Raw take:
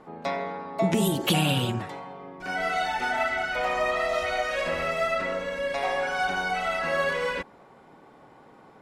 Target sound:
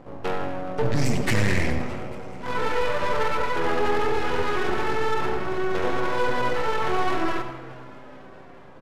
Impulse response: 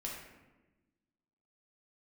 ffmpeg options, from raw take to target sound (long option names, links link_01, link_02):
-filter_complex "[0:a]equalizer=frequency=11000:width_type=o:width=0.67:gain=-4.5,aeval=exprs='max(val(0),0)':channel_layout=same,asetrate=29433,aresample=44100,atempo=1.49831,asoftclip=type=tanh:threshold=-20dB,asplit=6[link_01][link_02][link_03][link_04][link_05][link_06];[link_02]adelay=422,afreqshift=130,volume=-21dB[link_07];[link_03]adelay=844,afreqshift=260,volume=-25.4dB[link_08];[link_04]adelay=1266,afreqshift=390,volume=-29.9dB[link_09];[link_05]adelay=1688,afreqshift=520,volume=-34.3dB[link_10];[link_06]adelay=2110,afreqshift=650,volume=-38.7dB[link_11];[link_01][link_07][link_08][link_09][link_10][link_11]amix=inputs=6:normalize=0,asplit=2[link_12][link_13];[1:a]atrim=start_sample=2205,adelay=77[link_14];[link_13][link_14]afir=irnorm=-1:irlink=0,volume=-8dB[link_15];[link_12][link_15]amix=inputs=2:normalize=0,volume=7.5dB"